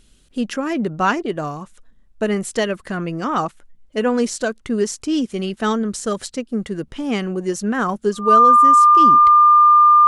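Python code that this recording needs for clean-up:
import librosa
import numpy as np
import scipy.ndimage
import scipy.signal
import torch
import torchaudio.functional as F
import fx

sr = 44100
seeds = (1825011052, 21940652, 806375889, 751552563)

y = fx.notch(x, sr, hz=1200.0, q=30.0)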